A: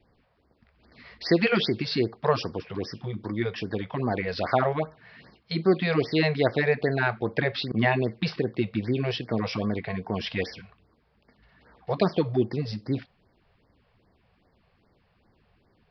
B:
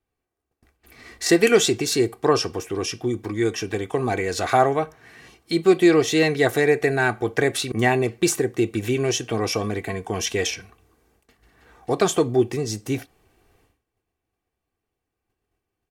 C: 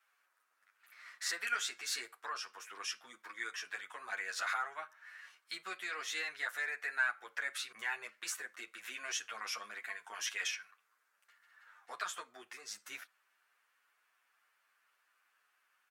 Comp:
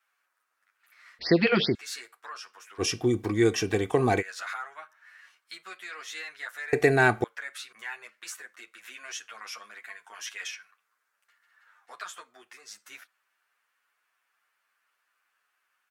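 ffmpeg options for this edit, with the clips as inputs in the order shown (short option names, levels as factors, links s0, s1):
-filter_complex "[1:a]asplit=2[s0][s1];[2:a]asplit=4[s2][s3][s4][s5];[s2]atrim=end=1.192[s6];[0:a]atrim=start=1.188:end=1.752[s7];[s3]atrim=start=1.748:end=2.82[s8];[s0]atrim=start=2.78:end=4.23[s9];[s4]atrim=start=4.19:end=6.732[s10];[s1]atrim=start=6.728:end=7.242[s11];[s5]atrim=start=7.238[s12];[s6][s7]acrossfade=d=0.004:c1=hsin:c2=hsin[s13];[s13][s8]acrossfade=d=0.004:c1=hsin:c2=hsin[s14];[s14][s9]acrossfade=d=0.04:c1=tri:c2=tri[s15];[s15][s10]acrossfade=d=0.04:c1=tri:c2=tri[s16];[s16][s11]acrossfade=d=0.004:c1=hsin:c2=hsin[s17];[s17][s12]acrossfade=d=0.004:c1=hsin:c2=hsin"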